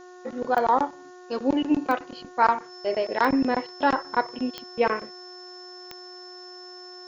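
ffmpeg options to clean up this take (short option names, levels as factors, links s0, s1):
-af "adeclick=t=4,bandreject=f=362:t=h:w=4,bandreject=f=724:t=h:w=4,bandreject=f=1086:t=h:w=4,bandreject=f=1448:t=h:w=4,bandreject=f=1810:t=h:w=4,bandreject=f=5300:w=30,afftdn=nr=25:nf=-45"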